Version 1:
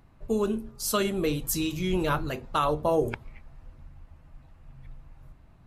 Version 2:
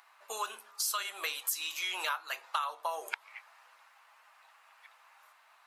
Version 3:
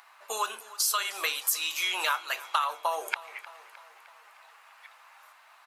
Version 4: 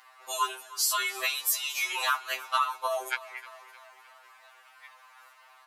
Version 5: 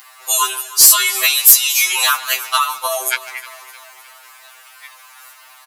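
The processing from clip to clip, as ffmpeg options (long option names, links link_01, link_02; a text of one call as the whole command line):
ffmpeg -i in.wav -af "highpass=frequency=930:width=0.5412,highpass=frequency=930:width=1.3066,acompressor=threshold=-40dB:ratio=6,volume=8.5dB" out.wav
ffmpeg -i in.wav -af "aecho=1:1:307|614|921|1228|1535:0.112|0.0662|0.0391|0.023|0.0136,volume=6dB" out.wav
ffmpeg -i in.wav -af "afftfilt=real='re*2.45*eq(mod(b,6),0)':imag='im*2.45*eq(mod(b,6),0)':win_size=2048:overlap=0.75,volume=2.5dB" out.wav
ffmpeg -i in.wav -filter_complex "[0:a]asplit=2[link_01][link_02];[link_02]adelay=150,highpass=300,lowpass=3400,asoftclip=type=hard:threshold=-23.5dB,volume=-15dB[link_03];[link_01][link_03]amix=inputs=2:normalize=0,crystalizer=i=4.5:c=0,aeval=exprs='1.58*sin(PI/2*2.51*val(0)/1.58)':channel_layout=same,volume=-5dB" out.wav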